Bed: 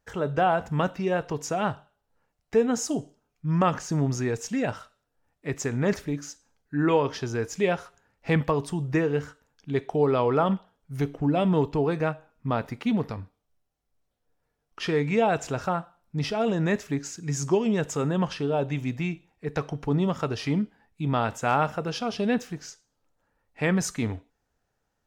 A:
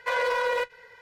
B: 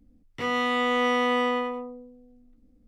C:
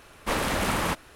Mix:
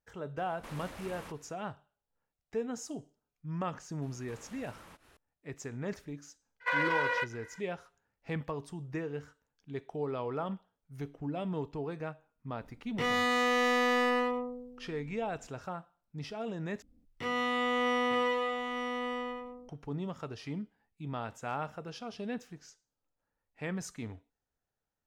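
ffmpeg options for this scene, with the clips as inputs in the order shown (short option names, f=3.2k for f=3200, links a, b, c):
-filter_complex "[3:a]asplit=2[a][b];[2:a]asplit=2[c][d];[0:a]volume=-13dB[e];[a]acompressor=threshold=-30dB:ratio=6:attack=3.2:release=140:knee=1:detection=peak[f];[b]acompressor=threshold=-41dB:ratio=6:attack=3.2:release=140:knee=1:detection=peak[g];[1:a]equalizer=f=1.7k:w=0.59:g=14[h];[c]asoftclip=type=hard:threshold=-25dB[i];[d]aecho=1:1:903:0.501[j];[e]asplit=2[k][l];[k]atrim=end=16.824[m];[j]atrim=end=2.87,asetpts=PTS-STARTPTS,volume=-6dB[n];[l]atrim=start=19.686[o];[f]atrim=end=1.15,asetpts=PTS-STARTPTS,volume=-13.5dB,afade=t=in:d=0.004:c=hsin,afade=t=out:st=1.146:d=0.004:c=hsin,adelay=370[p];[g]atrim=end=1.15,asetpts=PTS-STARTPTS,volume=-11dB,afade=t=in:d=0.004:c=hsin,afade=t=out:st=1.146:d=0.004:c=hsin,adelay=4020[q];[h]atrim=end=1.01,asetpts=PTS-STARTPTS,volume=-14dB,afade=t=in:d=0.02,afade=t=out:st=0.99:d=0.02,adelay=6600[r];[i]atrim=end=2.87,asetpts=PTS-STARTPTS,volume=-0.5dB,afade=t=in:d=0.004:c=hsin,afade=t=out:st=2.866:d=0.004:c=hsin,adelay=12600[s];[m][n]acrossfade=d=0.004:c1=hsin:c2=hsin[t];[t][o]acrossfade=d=0.004:c1=hsin:c2=hsin[u];[u][p][q][r][s]amix=inputs=5:normalize=0"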